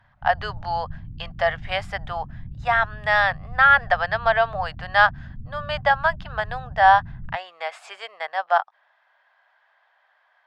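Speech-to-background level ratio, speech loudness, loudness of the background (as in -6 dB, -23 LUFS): 18.0 dB, -21.5 LUFS, -39.5 LUFS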